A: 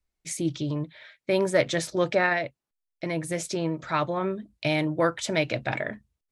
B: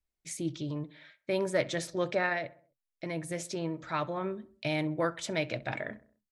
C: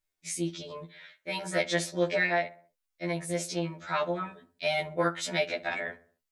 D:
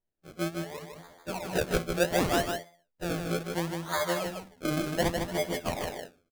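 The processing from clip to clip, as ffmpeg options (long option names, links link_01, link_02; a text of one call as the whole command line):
ffmpeg -i in.wav -filter_complex "[0:a]asplit=2[link_01][link_02];[link_02]adelay=65,lowpass=frequency=1800:poles=1,volume=-18dB,asplit=2[link_03][link_04];[link_04]adelay=65,lowpass=frequency=1800:poles=1,volume=0.51,asplit=2[link_05][link_06];[link_06]adelay=65,lowpass=frequency=1800:poles=1,volume=0.51,asplit=2[link_07][link_08];[link_08]adelay=65,lowpass=frequency=1800:poles=1,volume=0.51[link_09];[link_01][link_03][link_05][link_07][link_09]amix=inputs=5:normalize=0,volume=-6.5dB" out.wav
ffmpeg -i in.wav -af "lowshelf=frequency=420:gain=-7.5,afftfilt=real='re*2*eq(mod(b,4),0)':imag='im*2*eq(mod(b,4),0)':win_size=2048:overlap=0.75,volume=7.5dB" out.wav
ffmpeg -i in.wav -filter_complex "[0:a]lowpass=frequency=2500:width=0.5412,lowpass=frequency=2500:width=1.3066,acrusher=samples=32:mix=1:aa=0.000001:lfo=1:lforange=32:lforate=0.69,asplit=2[link_01][link_02];[link_02]aecho=0:1:154:0.562[link_03];[link_01][link_03]amix=inputs=2:normalize=0" out.wav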